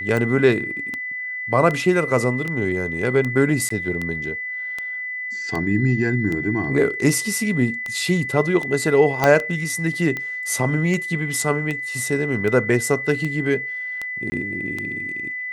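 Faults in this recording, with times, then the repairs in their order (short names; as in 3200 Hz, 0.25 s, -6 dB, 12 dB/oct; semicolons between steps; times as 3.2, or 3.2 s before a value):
tick 78 rpm
tone 2000 Hz -26 dBFS
3.69–3.7 gap 14 ms
9.24 pop -4 dBFS
14.3–14.32 gap 20 ms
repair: de-click; notch 2000 Hz, Q 30; interpolate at 3.69, 14 ms; interpolate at 14.3, 20 ms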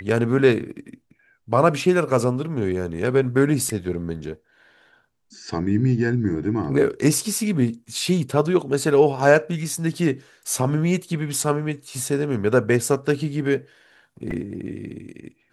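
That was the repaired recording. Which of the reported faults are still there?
9.24 pop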